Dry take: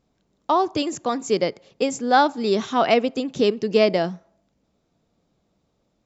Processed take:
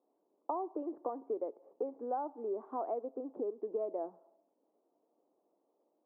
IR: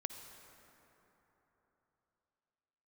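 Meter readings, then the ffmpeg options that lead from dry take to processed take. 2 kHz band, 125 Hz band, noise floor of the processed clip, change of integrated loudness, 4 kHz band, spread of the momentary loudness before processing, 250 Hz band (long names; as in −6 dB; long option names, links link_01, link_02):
below −40 dB, below −35 dB, −79 dBFS, −18.0 dB, below −40 dB, 8 LU, −19.5 dB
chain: -af "acompressor=threshold=-30dB:ratio=6,asuperpass=centerf=550:order=8:qfactor=0.74,volume=-3.5dB"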